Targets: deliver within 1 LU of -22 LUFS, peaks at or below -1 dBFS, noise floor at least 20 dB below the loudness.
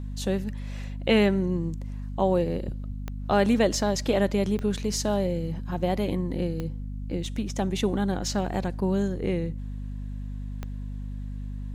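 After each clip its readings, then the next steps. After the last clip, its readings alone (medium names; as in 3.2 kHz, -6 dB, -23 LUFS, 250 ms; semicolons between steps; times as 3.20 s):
clicks found 4; hum 50 Hz; highest harmonic 250 Hz; hum level -31 dBFS; loudness -28.0 LUFS; peak level -9.5 dBFS; loudness target -22.0 LUFS
-> de-click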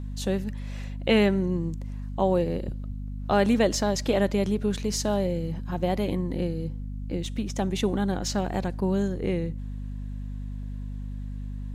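clicks found 0; hum 50 Hz; highest harmonic 250 Hz; hum level -31 dBFS
-> de-hum 50 Hz, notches 5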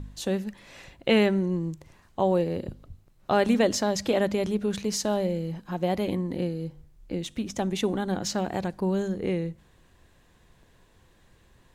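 hum not found; loudness -27.5 LUFS; peak level -10.0 dBFS; loudness target -22.0 LUFS
-> trim +5.5 dB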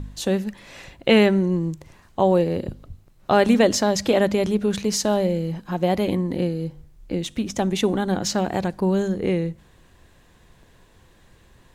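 loudness -22.0 LUFS; peak level -4.5 dBFS; noise floor -55 dBFS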